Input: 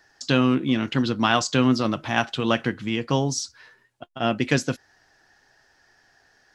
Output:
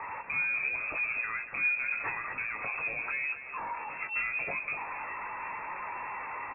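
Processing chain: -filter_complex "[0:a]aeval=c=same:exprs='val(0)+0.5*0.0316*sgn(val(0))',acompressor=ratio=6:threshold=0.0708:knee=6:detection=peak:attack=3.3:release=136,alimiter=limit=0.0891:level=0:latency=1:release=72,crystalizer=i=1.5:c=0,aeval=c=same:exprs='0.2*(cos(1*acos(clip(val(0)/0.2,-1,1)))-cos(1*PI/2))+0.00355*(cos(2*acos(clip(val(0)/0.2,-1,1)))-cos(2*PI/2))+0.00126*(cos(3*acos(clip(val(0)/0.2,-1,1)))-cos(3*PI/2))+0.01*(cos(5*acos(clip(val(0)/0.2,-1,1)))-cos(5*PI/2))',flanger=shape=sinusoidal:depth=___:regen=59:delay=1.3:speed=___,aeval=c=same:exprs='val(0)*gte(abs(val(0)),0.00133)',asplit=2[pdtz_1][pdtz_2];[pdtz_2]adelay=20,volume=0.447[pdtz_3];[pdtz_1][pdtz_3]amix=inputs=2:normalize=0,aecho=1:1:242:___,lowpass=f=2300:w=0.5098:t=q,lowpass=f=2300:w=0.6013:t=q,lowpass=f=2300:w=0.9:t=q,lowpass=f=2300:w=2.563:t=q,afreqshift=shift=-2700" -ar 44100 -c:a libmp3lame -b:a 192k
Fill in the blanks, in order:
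4.3, 0.78, 0.282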